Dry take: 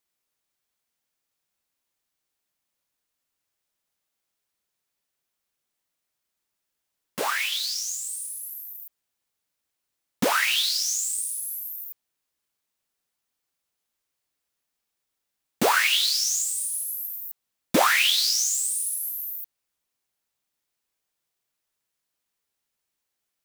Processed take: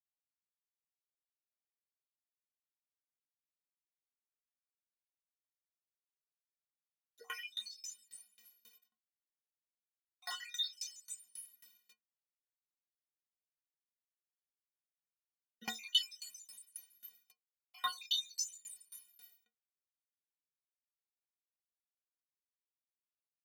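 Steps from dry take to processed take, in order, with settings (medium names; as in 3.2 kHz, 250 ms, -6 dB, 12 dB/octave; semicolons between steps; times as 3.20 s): random holes in the spectrogram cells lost 63%; word length cut 8-bit, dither none; peaking EQ 8.7 kHz -2.5 dB; inharmonic resonator 220 Hz, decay 0.3 s, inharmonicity 0.03; high-pass sweep 1.7 kHz -> 150 Hz, 6.01–7.87 s; frequency weighting D; sawtooth tremolo in dB decaying 3.7 Hz, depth 25 dB; trim -2.5 dB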